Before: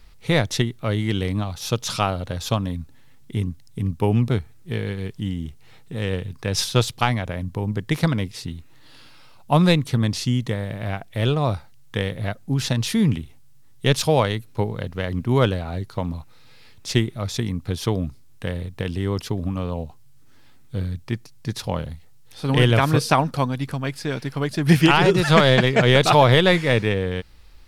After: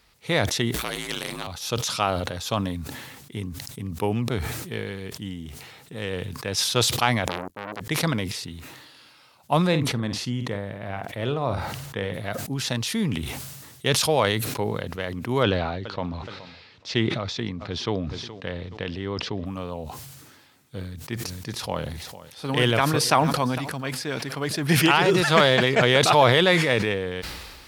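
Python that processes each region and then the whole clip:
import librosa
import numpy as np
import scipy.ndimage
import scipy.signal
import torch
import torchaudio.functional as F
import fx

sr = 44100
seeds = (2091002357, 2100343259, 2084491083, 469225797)

y = fx.chain(x, sr, fx.ring_mod(carrier_hz=59.0),
    fx.spectral_comp(ratio=2.0), at=(0.74, 1.47))
y = fx.chain(y, sr, fx.high_shelf(hz=4100.0, db=9.5),
    fx.transformer_sat(knee_hz=2000.0), at=(7.27, 7.81))
y = fx.chain(y, sr, fx.high_shelf(hz=3000.0, db=-11.0),
    fx.doubler(ms=50.0, db=-12.0), at=(9.67, 12.14))
y = fx.chain(y, sr, fx.lowpass(hz=5100.0, slope=24),
    fx.echo_feedback(ms=422, feedback_pct=32, wet_db=-24), at=(15.43, 19.46))
y = fx.chain(y, sr, fx.quant_float(bits=6),
    fx.echo_single(ms=456, db=-23.5), at=(20.79, 25.64))
y = scipy.signal.sosfilt(scipy.signal.butter(2, 54.0, 'highpass', fs=sr, output='sos'), y)
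y = fx.low_shelf(y, sr, hz=210.0, db=-10.5)
y = fx.sustainer(y, sr, db_per_s=36.0)
y = y * librosa.db_to_amplitude(-1.5)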